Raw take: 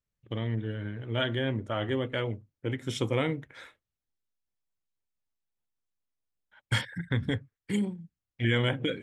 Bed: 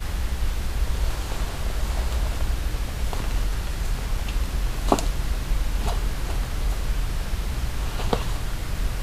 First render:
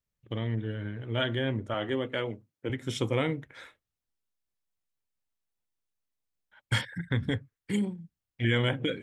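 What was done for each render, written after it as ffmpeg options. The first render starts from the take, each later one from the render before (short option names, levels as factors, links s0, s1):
-filter_complex "[0:a]asettb=1/sr,asplit=3[s0][s1][s2];[s0]atrim=end=1.744[s3];[s1]atrim=start=1.74:end=2.7,asetpts=PTS-STARTPTS,afade=t=in:d=0.004:c=qsin,afade=t=out:st=0.956:d=0.004:c=qsin,highpass=160[s4];[s2]atrim=start=2.696[s5];[s3][s4]acrossfade=d=0.004:c1=hsin:c2=qsin[s6];[s6][s5]acrossfade=d=0.004:c1=qsin:c2=hsin"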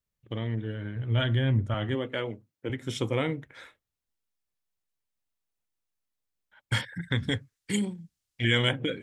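-filter_complex "[0:a]asplit=3[s0][s1][s2];[s0]afade=t=out:st=0.95:d=0.02[s3];[s1]asubboost=boost=8.5:cutoff=170,afade=t=in:st=0.95:d=0.02,afade=t=out:st=1.94:d=0.02[s4];[s2]afade=t=in:st=1.94:d=0.02[s5];[s3][s4][s5]amix=inputs=3:normalize=0,asplit=3[s6][s7][s8];[s6]afade=t=out:st=7.01:d=0.02[s9];[s7]equalizer=f=6400:w=0.45:g=11,afade=t=in:st=7.01:d=0.02,afade=t=out:st=8.71:d=0.02[s10];[s8]afade=t=in:st=8.71:d=0.02[s11];[s9][s10][s11]amix=inputs=3:normalize=0"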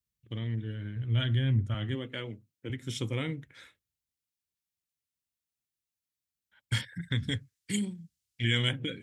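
-af "highpass=52,equalizer=f=740:w=0.57:g=-12"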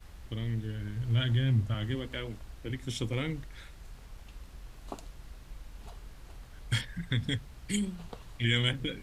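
-filter_complex "[1:a]volume=0.0794[s0];[0:a][s0]amix=inputs=2:normalize=0"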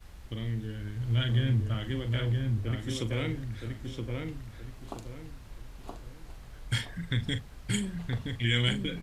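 -filter_complex "[0:a]asplit=2[s0][s1];[s1]adelay=41,volume=0.282[s2];[s0][s2]amix=inputs=2:normalize=0,asplit=2[s3][s4];[s4]adelay=972,lowpass=f=1900:p=1,volume=0.708,asplit=2[s5][s6];[s6]adelay=972,lowpass=f=1900:p=1,volume=0.34,asplit=2[s7][s8];[s8]adelay=972,lowpass=f=1900:p=1,volume=0.34,asplit=2[s9][s10];[s10]adelay=972,lowpass=f=1900:p=1,volume=0.34[s11];[s5][s7][s9][s11]amix=inputs=4:normalize=0[s12];[s3][s12]amix=inputs=2:normalize=0"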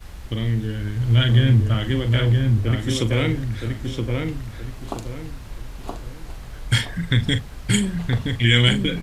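-af "volume=3.55,alimiter=limit=0.794:level=0:latency=1"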